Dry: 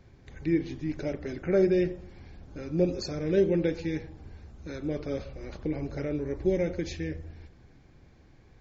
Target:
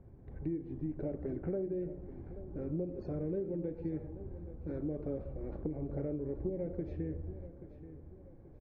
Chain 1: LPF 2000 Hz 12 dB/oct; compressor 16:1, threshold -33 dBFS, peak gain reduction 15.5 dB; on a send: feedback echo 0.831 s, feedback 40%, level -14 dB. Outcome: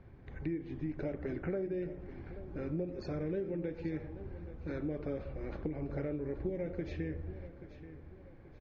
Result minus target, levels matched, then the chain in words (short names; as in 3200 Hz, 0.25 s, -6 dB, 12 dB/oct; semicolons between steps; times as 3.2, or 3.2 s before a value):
2000 Hz band +13.5 dB
LPF 710 Hz 12 dB/oct; compressor 16:1, threshold -33 dBFS, peak gain reduction 15.5 dB; on a send: feedback echo 0.831 s, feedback 40%, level -14 dB